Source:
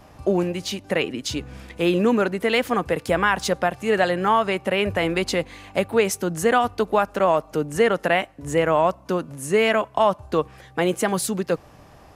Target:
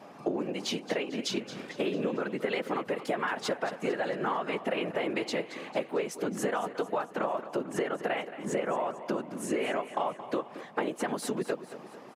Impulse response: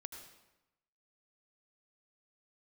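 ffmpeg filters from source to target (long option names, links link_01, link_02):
-filter_complex "[0:a]lowpass=frequency=3400:poles=1,afftfilt=real='hypot(re,im)*cos(2*PI*random(0))':imag='hypot(re,im)*sin(2*PI*random(1))':win_size=512:overlap=0.75,highpass=frequency=190:width=0.5412,highpass=frequency=190:width=1.3066,acompressor=threshold=-34dB:ratio=10,asplit=2[link_01][link_02];[link_02]aecho=0:1:224|448|672|896|1120:0.211|0.11|0.0571|0.0297|0.0155[link_03];[link_01][link_03]amix=inputs=2:normalize=0,volume=6.5dB"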